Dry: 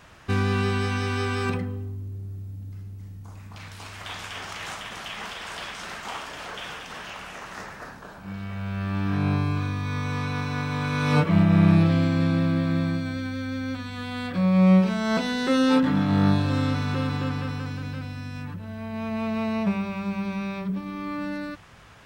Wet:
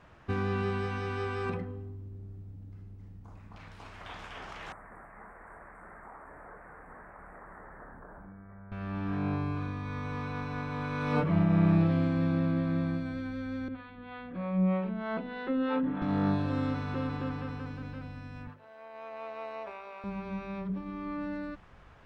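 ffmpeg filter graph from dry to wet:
-filter_complex "[0:a]asettb=1/sr,asplit=3[a][b][c];[a]atrim=end=4.724[d];[b]atrim=start=4.72:end=8.72,asetpts=PTS-STARTPTS,afade=t=in:d=0.004:c=qsin,afade=t=out:st=3.996:d=0.004:c=qsin,acompressor=threshold=-38dB:ratio=5:attack=3.2:release=140:knee=1:detection=peak,asuperstop=centerf=4200:order=12:qfactor=0.68[e];[c]atrim=start=8.716[f];[d][e]acrossfade=d=0.004:c1=hsin:c2=qsin[g];[g][f]acrossfade=d=0.004:c1=qsin:c2=hsin,asettb=1/sr,asplit=3[h][i][j];[h]atrim=end=13.684[k];[i]atrim=start=13.68:end=16.02,asetpts=PTS-STARTPTS,afade=t=in:d=0.004:c=qsin,afade=t=out:st=2.336:d=0.004:c=qsin,lowpass=f=3.4k:w=0.5412,lowpass=f=3.4k:w=1.3066,equalizer=f=65:t=o:w=1.4:g=-12,acrossover=split=430[l][m];[l]aeval=exprs='val(0)*(1-0.7/2+0.7/2*cos(2*PI*3.2*n/s))':c=same[n];[m]aeval=exprs='val(0)*(1-0.7/2-0.7/2*cos(2*PI*3.2*n/s))':c=same[o];[n][o]amix=inputs=2:normalize=0[p];[j]atrim=start=16.016[q];[k][p]acrossfade=d=0.004:c1=hsin:c2=qsin[r];[r][q]acrossfade=d=0.004:c1=qsin:c2=hsin,asettb=1/sr,asplit=3[s][t][u];[s]atrim=end=18.474[v];[t]atrim=start=18.47:end=20.04,asetpts=PTS-STARTPTS,afade=t=in:d=0.004:c=qsin,afade=t=out:st=1.566:d=0.004:c=qsin,highpass=f=450:w=0.5412,highpass=f=450:w=1.3066,tremolo=f=140:d=0.4[w];[u]atrim=start=20.036[x];[v][w]acrossfade=d=0.004:c1=hsin:c2=qsin[y];[y][x]acrossfade=d=0.004:c1=qsin:c2=hsin,lowpass=f=1.2k:p=1,bandreject=f=50:t=h:w=6,bandreject=f=100:t=h:w=6,bandreject=f=150:t=h:w=6,bandreject=f=200:t=h:w=6,bandreject=f=250:t=h:w=6,asubboost=boost=3:cutoff=57,volume=-3.5dB"

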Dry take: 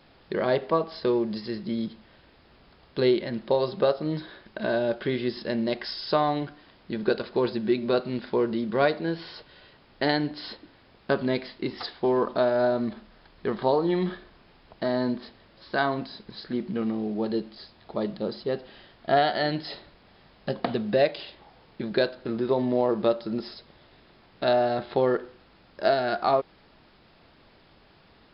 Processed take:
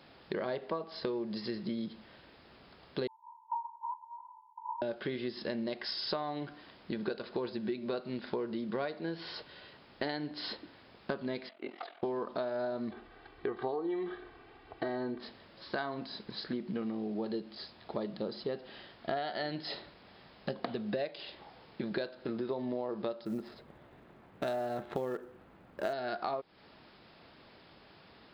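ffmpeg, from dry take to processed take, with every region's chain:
-filter_complex "[0:a]asettb=1/sr,asplit=3[a][b][c];[a]atrim=end=3.074[d];[b]atrim=start=3.07:end=4.82,asetpts=PTS-STARTPTS,afade=t=in:d=0.004:c=qsin,afade=t=out:st=1.746:d=0.004:c=qsin,asuperpass=centerf=940:order=20:qfactor=5.7,acontrast=74,asplit=2[e][f];[f]adelay=19,volume=-7dB[g];[e][g]amix=inputs=2:normalize=0,atrim=end_sample=77175[h];[c]atrim=start=4.816[i];[d][h]acrossfade=d=0.004:c1=hsin:c2=qsin[j];[j][i]acrossfade=d=0.004:c1=qsin:c2=hsin,asettb=1/sr,asplit=3[k][l][m];[k]atrim=end=11.494[n];[l]atrim=start=11.49:end=12.03,asetpts=PTS-STARTPTS,afade=t=in:d=0.004:c=qsin,afade=t=out:st=0.536:d=0.004:c=qsin,aeval=exprs='val(0)*sin(2*PI*21*n/s)':c=same,highpass=450,equalizer=f=450:t=q:w=4:g=-6,equalizer=f=670:t=q:w=4:g=8,equalizer=f=970:t=q:w=4:g=-8,equalizer=f=1.8k:t=q:w=4:g=-9,lowpass=f=2.6k:w=0.5412,lowpass=f=2.6k:w=1.3066[o];[m]atrim=start=12.026[p];[n][o]acrossfade=d=0.004:c1=hsin:c2=qsin[q];[q][p]acrossfade=d=0.004:c1=qsin:c2=hsin,asettb=1/sr,asplit=3[r][s][t];[r]atrim=end=12.914[u];[s]atrim=start=12.91:end=15.2,asetpts=PTS-STARTPTS,afade=t=in:d=0.004:c=qsin,afade=t=out:st=2.286:d=0.004:c=qsin,lowpass=2.7k,aecho=1:1:2.6:0.8,atrim=end_sample=100989[v];[t]atrim=start=15.196[w];[u][v]acrossfade=d=0.004:c1=hsin:c2=qsin[x];[x][w]acrossfade=d=0.004:c1=qsin:c2=hsin,asettb=1/sr,asplit=3[y][z][aa];[y]atrim=end=23.254[ab];[z]atrim=start=23.25:end=25.93,asetpts=PTS-STARTPTS,afade=t=in:d=0.004:c=qsin,afade=t=out:st=2.676:d=0.004:c=qsin,bass=f=250:g=3,treble=f=4k:g=-7,adynamicsmooth=sensitivity=7:basefreq=2.2k,acrusher=bits=8:mode=log:mix=0:aa=0.000001[ac];[aa]atrim=start=25.926[ad];[ab][ac]acrossfade=d=0.004:c1=hsin:c2=qsin[ae];[ae][ad]acrossfade=d=0.004:c1=qsin:c2=hsin,highpass=f=120:p=1,acompressor=threshold=-33dB:ratio=6"

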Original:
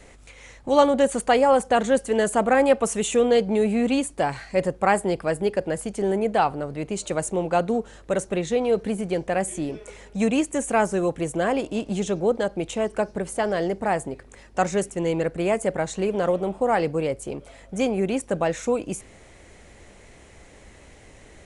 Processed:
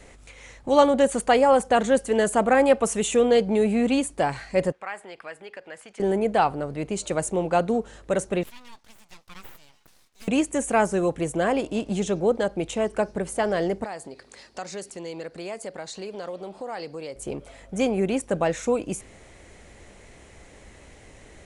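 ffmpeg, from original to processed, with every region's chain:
-filter_complex "[0:a]asettb=1/sr,asplit=3[a][b][c];[a]atrim=end=4.724[d];[b]atrim=start=4.72:end=6,asetpts=PTS-STARTPTS,afade=t=in:d=0.004:c=qsin,afade=t=out:st=1.276:d=0.004:c=qsin,acompressor=threshold=-26dB:ratio=2.5:attack=3.2:release=140:knee=1:detection=peak,bandpass=f=2.1k:t=q:w=1[e];[c]atrim=start=5.996[f];[d][e]acrossfade=d=0.004:c1=hsin:c2=qsin[g];[g][f]acrossfade=d=0.004:c1=qsin:c2=hsin,asettb=1/sr,asplit=3[h][i][j];[h]atrim=end=8.434[k];[i]atrim=start=8.43:end=10.28,asetpts=PTS-STARTPTS,afade=t=in:d=0.004:c=qsin,afade=t=out:st=1.846:d=0.004:c=qsin,lowpass=5.4k,aderivative,aeval=exprs='abs(val(0))':c=same[l];[j]atrim=start=10.276[m];[k][l]acrossfade=d=0.004:c1=hsin:c2=qsin[n];[n][m]acrossfade=d=0.004:c1=qsin:c2=hsin,asettb=1/sr,asplit=3[o][p][q];[o]atrim=end=13.844[r];[p]atrim=start=13.84:end=17.16,asetpts=PTS-STARTPTS,afade=t=in:d=0.004:c=qsin,afade=t=out:st=3.316:d=0.004:c=qsin,highpass=f=300:p=1,equalizer=f=4.5k:t=o:w=0.48:g=14,acompressor=threshold=-39dB:ratio=2:attack=3.2:release=140:knee=1:detection=peak[s];[q]atrim=start=17.156[t];[r][s]acrossfade=d=0.004:c1=hsin:c2=qsin[u];[u][t]acrossfade=d=0.004:c1=qsin:c2=hsin"

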